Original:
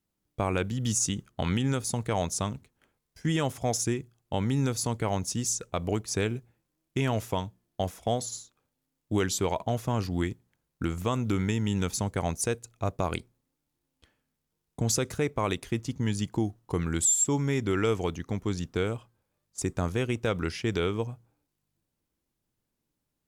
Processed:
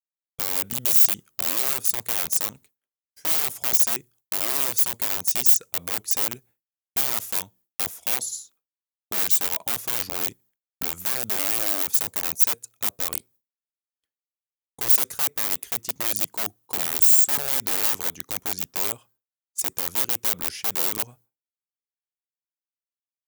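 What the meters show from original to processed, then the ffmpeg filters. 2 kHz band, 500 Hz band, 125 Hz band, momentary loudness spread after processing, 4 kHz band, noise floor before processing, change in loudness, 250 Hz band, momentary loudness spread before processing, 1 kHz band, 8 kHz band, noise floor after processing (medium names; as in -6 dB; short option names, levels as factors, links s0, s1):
+2.5 dB, -9.0 dB, -18.0 dB, 12 LU, +6.0 dB, -82 dBFS, +8.0 dB, -13.0 dB, 8 LU, -2.0 dB, +4.5 dB, under -85 dBFS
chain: -af "aeval=exprs='(mod(15.8*val(0)+1,2)-1)/15.8':c=same,aemphasis=mode=production:type=bsi,agate=range=0.0224:threshold=0.00501:ratio=3:detection=peak,volume=0.708"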